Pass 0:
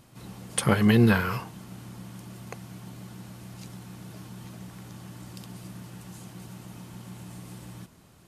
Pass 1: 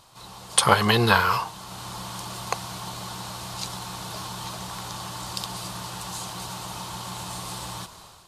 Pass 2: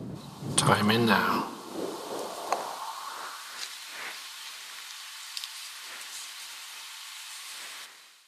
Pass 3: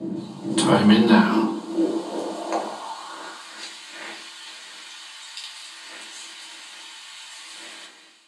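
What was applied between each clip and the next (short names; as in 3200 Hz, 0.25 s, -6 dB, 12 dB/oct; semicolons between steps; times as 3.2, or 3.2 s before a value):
graphic EQ 125/250/1000/2000/4000/8000 Hz -5/-11/+11/-4/+10/+4 dB; AGC gain up to 9.5 dB
wind noise 290 Hz -28 dBFS; split-band echo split 520 Hz, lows 0.161 s, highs 82 ms, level -16 dB; high-pass sweep 140 Hz -> 2000 Hz, 0.75–3.75; gain -5.5 dB
speaker cabinet 170–8900 Hz, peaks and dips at 220 Hz +9 dB, 330 Hz +7 dB, 1300 Hz -6 dB, 5500 Hz -8 dB; shoebox room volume 130 m³, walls furnished, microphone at 2.7 m; gain -2 dB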